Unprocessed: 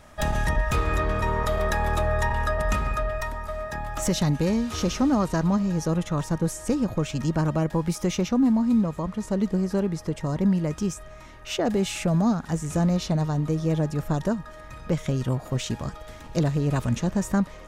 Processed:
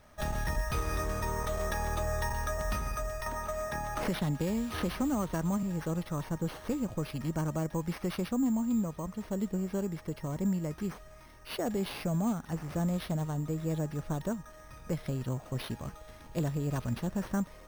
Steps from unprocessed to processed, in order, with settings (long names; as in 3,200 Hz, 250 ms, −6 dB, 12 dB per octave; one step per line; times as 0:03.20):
bad sample-rate conversion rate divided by 6×, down none, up hold
0:03.26–0:05.63: multiband upward and downward compressor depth 70%
level −8.5 dB